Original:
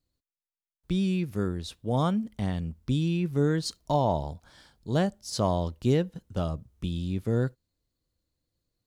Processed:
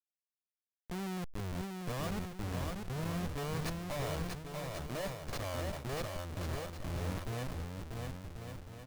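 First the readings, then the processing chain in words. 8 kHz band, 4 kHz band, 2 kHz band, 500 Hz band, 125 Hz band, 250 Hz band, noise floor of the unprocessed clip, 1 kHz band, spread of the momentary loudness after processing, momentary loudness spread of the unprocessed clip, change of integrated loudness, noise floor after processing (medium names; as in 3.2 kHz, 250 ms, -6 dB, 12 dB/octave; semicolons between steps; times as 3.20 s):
-4.5 dB, -6.5 dB, -2.0 dB, -11.0 dB, -10.0 dB, -12.5 dB, under -85 dBFS, -9.5 dB, 6 LU, 8 LU, -11.0 dB, under -85 dBFS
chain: comb filter that takes the minimum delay 1.7 ms; Schmitt trigger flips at -31 dBFS; on a send: bouncing-ball echo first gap 640 ms, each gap 0.7×, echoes 5; on the sum: decay stretcher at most 77 dB/s; trim -7 dB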